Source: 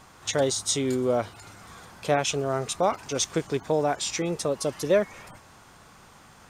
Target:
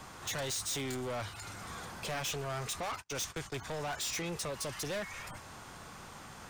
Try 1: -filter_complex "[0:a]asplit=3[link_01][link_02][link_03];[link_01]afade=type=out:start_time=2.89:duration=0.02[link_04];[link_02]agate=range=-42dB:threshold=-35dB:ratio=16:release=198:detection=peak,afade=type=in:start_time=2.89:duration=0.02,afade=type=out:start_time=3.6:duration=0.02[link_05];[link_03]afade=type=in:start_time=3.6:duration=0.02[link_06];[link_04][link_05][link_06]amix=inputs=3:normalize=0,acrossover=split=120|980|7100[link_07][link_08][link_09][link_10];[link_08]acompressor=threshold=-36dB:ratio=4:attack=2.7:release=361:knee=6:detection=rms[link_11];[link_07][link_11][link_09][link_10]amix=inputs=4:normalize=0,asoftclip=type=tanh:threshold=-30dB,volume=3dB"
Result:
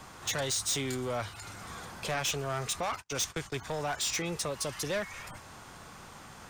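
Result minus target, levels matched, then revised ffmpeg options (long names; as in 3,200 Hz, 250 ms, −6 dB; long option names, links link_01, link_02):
soft clipping: distortion −4 dB
-filter_complex "[0:a]asplit=3[link_01][link_02][link_03];[link_01]afade=type=out:start_time=2.89:duration=0.02[link_04];[link_02]agate=range=-42dB:threshold=-35dB:ratio=16:release=198:detection=peak,afade=type=in:start_time=2.89:duration=0.02,afade=type=out:start_time=3.6:duration=0.02[link_05];[link_03]afade=type=in:start_time=3.6:duration=0.02[link_06];[link_04][link_05][link_06]amix=inputs=3:normalize=0,acrossover=split=120|980|7100[link_07][link_08][link_09][link_10];[link_08]acompressor=threshold=-36dB:ratio=4:attack=2.7:release=361:knee=6:detection=rms[link_11];[link_07][link_11][link_09][link_10]amix=inputs=4:normalize=0,asoftclip=type=tanh:threshold=-37dB,volume=3dB"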